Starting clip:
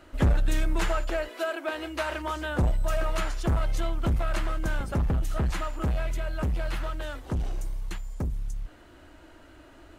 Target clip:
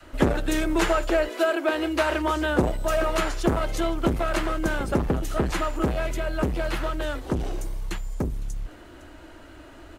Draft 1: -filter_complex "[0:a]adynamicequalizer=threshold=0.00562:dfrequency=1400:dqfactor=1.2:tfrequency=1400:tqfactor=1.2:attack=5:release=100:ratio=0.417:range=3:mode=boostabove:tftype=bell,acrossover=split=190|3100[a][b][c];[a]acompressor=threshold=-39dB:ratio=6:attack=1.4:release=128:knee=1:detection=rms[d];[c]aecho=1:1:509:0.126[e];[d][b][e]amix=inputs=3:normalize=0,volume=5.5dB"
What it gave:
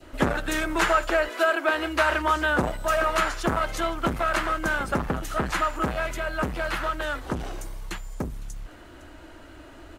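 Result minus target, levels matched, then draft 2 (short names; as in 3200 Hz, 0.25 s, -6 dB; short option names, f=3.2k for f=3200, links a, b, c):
compressor: peak gain reduction +5.5 dB; 1000 Hz band +3.5 dB
-filter_complex "[0:a]adynamicequalizer=threshold=0.00562:dfrequency=370:dqfactor=1.2:tfrequency=370:tqfactor=1.2:attack=5:release=100:ratio=0.417:range=3:mode=boostabove:tftype=bell,acrossover=split=190|3100[a][b][c];[a]acompressor=threshold=-32dB:ratio=6:attack=1.4:release=128:knee=1:detection=rms[d];[c]aecho=1:1:509:0.126[e];[d][b][e]amix=inputs=3:normalize=0,volume=5.5dB"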